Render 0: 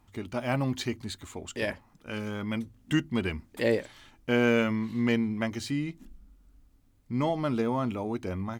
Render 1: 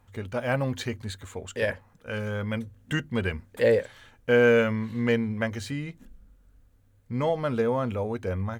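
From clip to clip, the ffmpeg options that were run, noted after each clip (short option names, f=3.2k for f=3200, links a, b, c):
-af "equalizer=f=100:t=o:w=0.33:g=9,equalizer=f=315:t=o:w=0.33:g=-8,equalizer=f=500:t=o:w=0.33:g=11,equalizer=f=1.6k:t=o:w=0.33:g=7,equalizer=f=5k:t=o:w=0.33:g=-4"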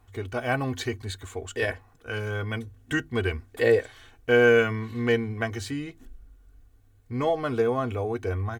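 -af "aecho=1:1:2.7:0.78"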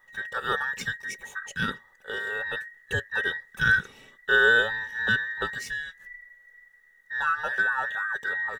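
-af "afftfilt=real='real(if(between(b,1,1012),(2*floor((b-1)/92)+1)*92-b,b),0)':imag='imag(if(between(b,1,1012),(2*floor((b-1)/92)+1)*92-b,b),0)*if(between(b,1,1012),-1,1)':win_size=2048:overlap=0.75,volume=-1.5dB"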